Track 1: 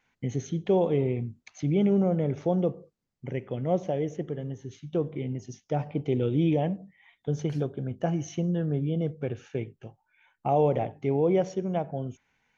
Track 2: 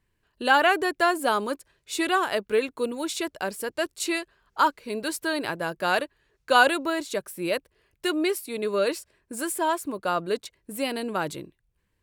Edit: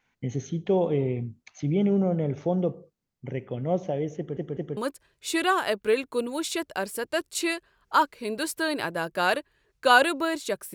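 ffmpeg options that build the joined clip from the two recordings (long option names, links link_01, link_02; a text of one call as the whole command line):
ffmpeg -i cue0.wav -i cue1.wav -filter_complex "[0:a]apad=whole_dur=10.74,atrim=end=10.74,asplit=3[link_01][link_02][link_03];[link_01]atrim=end=4.372[link_04];[link_02]atrim=start=4.168:end=4.372[link_05];[link_03]atrim=start=4.168:end=4.372[link_06];[1:a]atrim=start=1.418:end=7.39[link_07];[link_04][link_05]acrossfade=duration=0.004:curve1=hsin:curve2=hsin[link_08];[link_08][link_06]acrossfade=duration=0.004:curve1=hsin:curve2=hsin[link_09];[link_09][link_07]acrossfade=duration=0.004:curve1=hsin:curve2=hsin" out.wav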